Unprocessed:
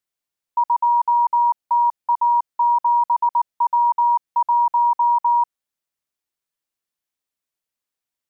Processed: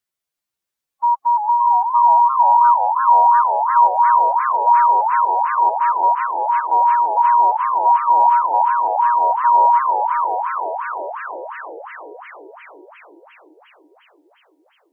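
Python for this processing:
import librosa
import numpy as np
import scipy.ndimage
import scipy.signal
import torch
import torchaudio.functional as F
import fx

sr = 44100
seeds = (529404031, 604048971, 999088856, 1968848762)

y = fx.stretch_vocoder(x, sr, factor=1.8)
y = fx.echo_diffused(y, sr, ms=521, feedback_pct=41, wet_db=-9.5)
y = fx.echo_warbled(y, sr, ms=344, feedback_pct=70, rate_hz=2.8, cents=207, wet_db=-8)
y = y * librosa.db_to_amplitude(2.0)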